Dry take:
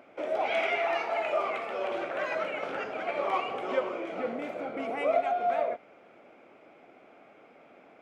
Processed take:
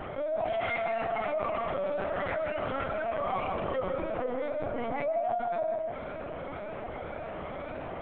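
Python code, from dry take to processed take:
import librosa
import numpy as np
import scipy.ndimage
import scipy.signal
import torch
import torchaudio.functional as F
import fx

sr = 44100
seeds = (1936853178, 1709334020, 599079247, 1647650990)

p1 = fx.spec_ripple(x, sr, per_octave=1.5, drift_hz=1.9, depth_db=8)
p2 = fx.peak_eq(p1, sr, hz=2500.0, db=-8.0, octaves=0.57)
p3 = fx.lpc_vocoder(p2, sr, seeds[0], excitation='pitch_kept', order=10)
p4 = fx.low_shelf(p3, sr, hz=93.0, db=-8.0)
p5 = p4 + fx.echo_single(p4, sr, ms=155, db=-9.0, dry=0)
p6 = fx.env_flatten(p5, sr, amount_pct=70)
y = p6 * 10.0 ** (-8.0 / 20.0)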